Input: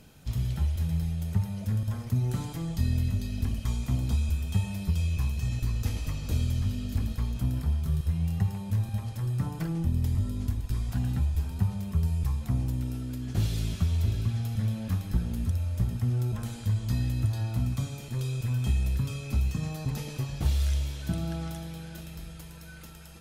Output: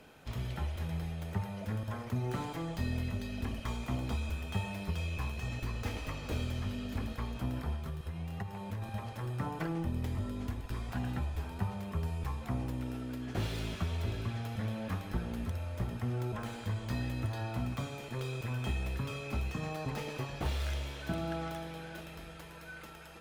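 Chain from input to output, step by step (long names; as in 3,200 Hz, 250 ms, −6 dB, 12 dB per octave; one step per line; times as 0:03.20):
stylus tracing distortion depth 0.071 ms
three-way crossover with the lows and the highs turned down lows −14 dB, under 310 Hz, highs −12 dB, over 2,900 Hz
0:07.75–0:08.82: downward compressor, threshold −40 dBFS, peak gain reduction 7.5 dB
level +4.5 dB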